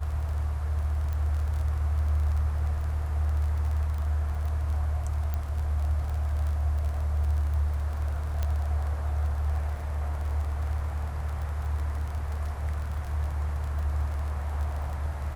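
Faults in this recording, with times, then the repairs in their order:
crackle 26 per s -33 dBFS
1.13 s: pop -23 dBFS
5.34 s: pop -19 dBFS
8.43 s: pop -17 dBFS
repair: de-click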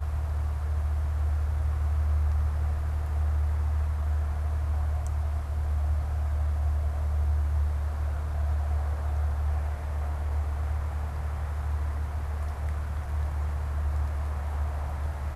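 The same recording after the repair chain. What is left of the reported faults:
8.43 s: pop

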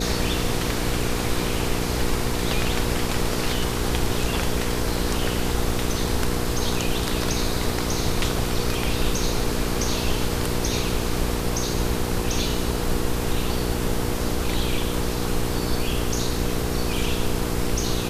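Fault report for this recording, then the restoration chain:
hum 60 Hz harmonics 8 -28 dBFS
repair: de-hum 60 Hz, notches 8

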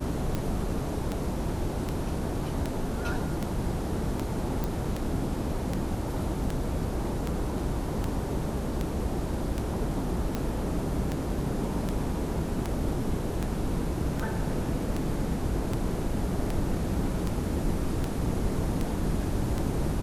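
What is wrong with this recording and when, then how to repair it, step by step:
tick 78 rpm -16 dBFS
4.64 s: pop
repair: de-click

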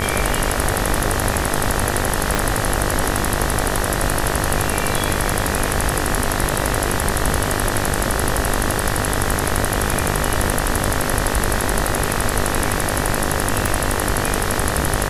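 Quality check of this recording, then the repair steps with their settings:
buzz 50 Hz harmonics 39 -24 dBFS
2.35 s: pop
13.66 s: pop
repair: de-click; de-hum 50 Hz, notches 39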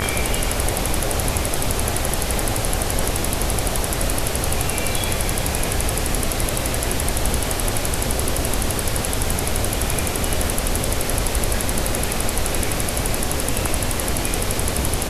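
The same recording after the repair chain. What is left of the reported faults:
2.35 s: pop

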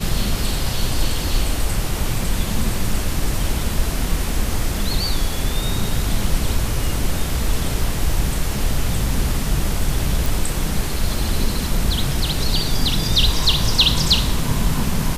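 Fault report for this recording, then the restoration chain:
10.26 s: pop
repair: de-click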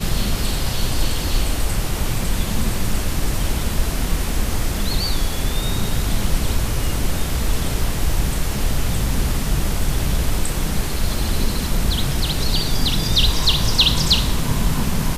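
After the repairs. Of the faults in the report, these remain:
nothing left

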